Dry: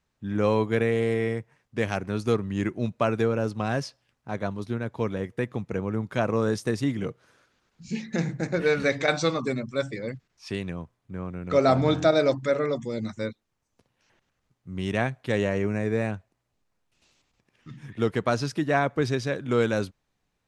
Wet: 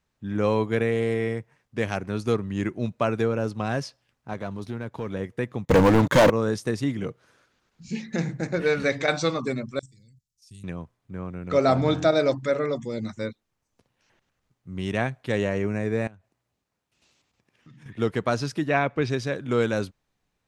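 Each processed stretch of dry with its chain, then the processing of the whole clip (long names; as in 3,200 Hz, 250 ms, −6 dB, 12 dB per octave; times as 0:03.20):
0:04.33–0:05.10: leveller curve on the samples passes 1 + downward compressor 2 to 1, threshold −32 dBFS
0:05.65–0:06.30: EQ curve with evenly spaced ripples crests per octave 1.1, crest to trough 10 dB + leveller curve on the samples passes 5
0:09.79–0:10.64: Chebyshev band-stop filter 110–8,200 Hz + tilt shelving filter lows −5 dB, about 1,200 Hz + output level in coarse steps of 11 dB
0:16.07–0:17.86: high-pass filter 59 Hz + downward compressor 5 to 1, threshold −47 dBFS
0:18.69–0:19.10: low-pass filter 5,200 Hz + parametric band 2,500 Hz +8 dB 0.37 octaves
whole clip: no processing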